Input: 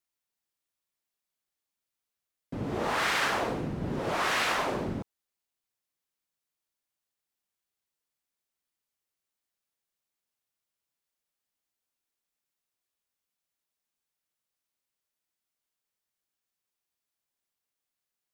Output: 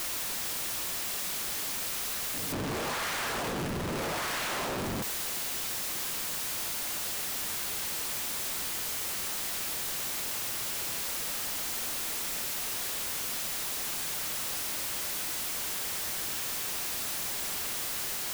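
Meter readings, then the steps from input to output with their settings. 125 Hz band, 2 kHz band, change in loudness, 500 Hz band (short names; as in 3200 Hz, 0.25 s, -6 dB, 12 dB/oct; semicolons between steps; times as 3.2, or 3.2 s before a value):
-0.5 dB, 0.0 dB, -1.5 dB, -1.5 dB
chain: infinite clipping; reverse echo 0.187 s -9.5 dB; gain +5.5 dB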